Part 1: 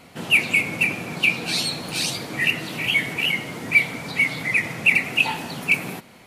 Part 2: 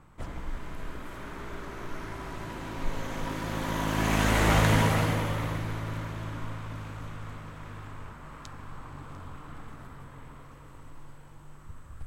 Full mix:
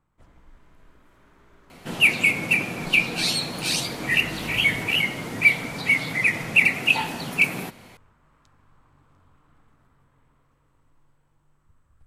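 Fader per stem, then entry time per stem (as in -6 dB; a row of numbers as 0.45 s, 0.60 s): 0.0 dB, -16.5 dB; 1.70 s, 0.00 s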